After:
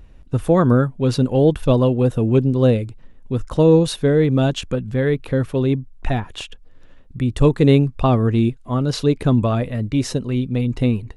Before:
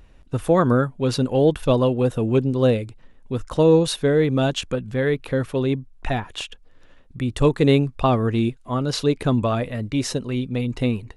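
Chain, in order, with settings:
low-shelf EQ 350 Hz +7 dB
level −1 dB

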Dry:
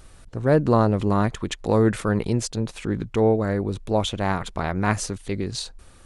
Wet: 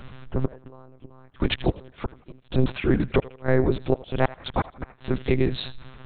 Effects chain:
0:02.72–0:04.99: low-shelf EQ 100 Hz −6.5 dB
gate with flip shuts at −13 dBFS, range −35 dB
feedback echo with a high-pass in the loop 84 ms, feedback 48%, high-pass 540 Hz, level −17 dB
one-pitch LPC vocoder at 8 kHz 130 Hz
level +6.5 dB

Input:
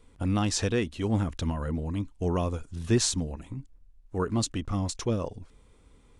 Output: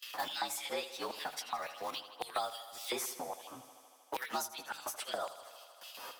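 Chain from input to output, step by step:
partials spread apart or drawn together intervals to 113%
high-pass filter 61 Hz 24 dB per octave
noise gate with hold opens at −55 dBFS
auto-filter high-pass square 3.6 Hz 810–3,000 Hz
in parallel at −11.5 dB: centre clipping without the shift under −44 dBFS
on the sum: mains-hum notches 50/100/150 Hz
on a send: feedback echo with a high-pass in the loop 78 ms, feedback 62%, high-pass 200 Hz, level −14.5 dB
on the sum: multiband upward and downward compressor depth 100%
level −2 dB

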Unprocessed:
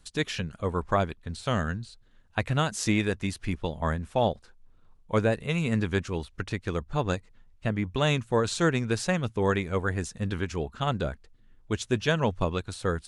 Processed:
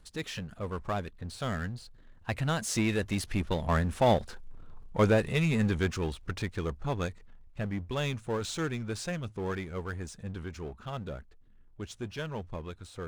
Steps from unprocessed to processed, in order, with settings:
source passing by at 0:04.50, 13 m/s, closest 10 metres
power curve on the samples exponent 0.7
one half of a high-frequency compander decoder only

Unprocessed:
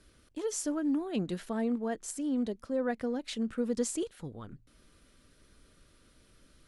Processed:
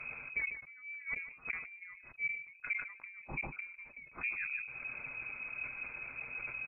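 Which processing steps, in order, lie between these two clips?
gate with flip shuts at −27 dBFS, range −35 dB
comb filter 7.3 ms, depth 60%
downward compressor 3 to 1, threshold −55 dBFS, peak gain reduction 18.5 dB
high-frequency loss of the air 78 metres
voice inversion scrambler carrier 3,200 Hz
low-shelf EQ 330 Hz +4 dB
pitch shifter −4 semitones
single-tap delay 150 ms −14.5 dB
level that may fall only so fast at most 89 dB per second
level +15 dB

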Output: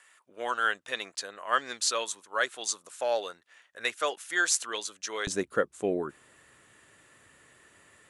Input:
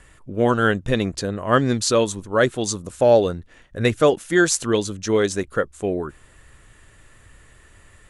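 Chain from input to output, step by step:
high-pass filter 1,000 Hz 12 dB per octave, from 0:05.27 200 Hz
level −4.5 dB

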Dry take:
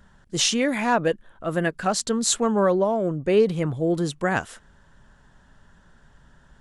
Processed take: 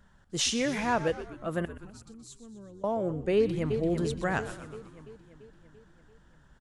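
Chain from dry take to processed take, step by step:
0:01.65–0:02.84: guitar amp tone stack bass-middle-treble 10-0-1
0:03.36–0:03.80: delay throw 340 ms, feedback 60%, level −7 dB
echo with shifted repeats 124 ms, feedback 59%, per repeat −96 Hz, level −13 dB
level −6.5 dB

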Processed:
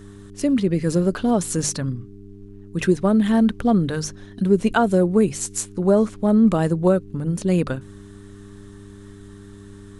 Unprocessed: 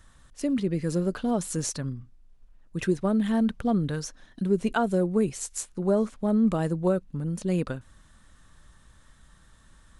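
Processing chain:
mains-hum notches 50/100/150 Hz
hum with harmonics 100 Hz, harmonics 4, −49 dBFS −2 dB per octave
level +7 dB

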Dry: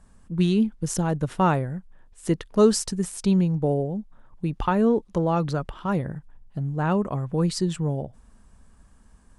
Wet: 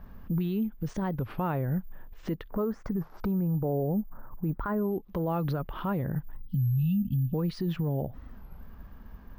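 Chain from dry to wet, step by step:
0:02.49–0:04.93: high shelf with overshoot 2,000 Hz −13.5 dB, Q 1.5
0:06.43–0:07.33: time-frequency box erased 260–2,600 Hz
downward compressor 10 to 1, threshold −30 dBFS, peak gain reduction 18.5 dB
brickwall limiter −29.5 dBFS, peak gain reduction 9 dB
bad sample-rate conversion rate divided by 3×, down filtered, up zero stuff
high-frequency loss of the air 290 metres
wow of a warped record 33 1/3 rpm, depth 250 cents
level +8 dB

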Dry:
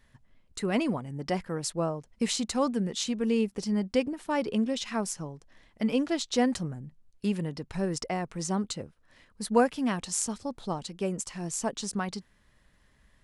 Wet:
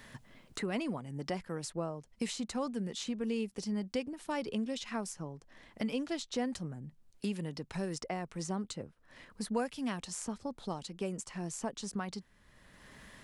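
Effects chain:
multiband upward and downward compressor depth 70%
level −7.5 dB

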